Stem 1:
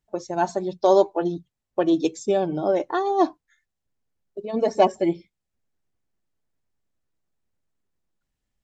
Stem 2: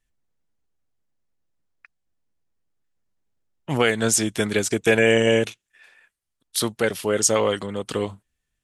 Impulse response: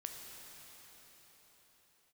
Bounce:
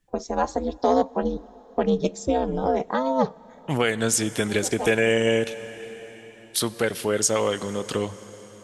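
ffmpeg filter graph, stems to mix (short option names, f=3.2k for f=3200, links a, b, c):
-filter_complex "[0:a]acontrast=23,aeval=exprs='val(0)*sin(2*PI*130*n/s)':c=same,volume=0dB,asplit=2[a][b];[b]volume=-19dB[c];[1:a]volume=-0.5dB,asplit=3[d][e][f];[e]volume=-9.5dB[g];[f]apad=whole_len=380605[h];[a][h]sidechaincompress=threshold=-37dB:ratio=8:attack=16:release=390[i];[2:a]atrim=start_sample=2205[j];[c][g]amix=inputs=2:normalize=0[k];[k][j]afir=irnorm=-1:irlink=0[l];[i][d][l]amix=inputs=3:normalize=0,acompressor=threshold=-24dB:ratio=1.5"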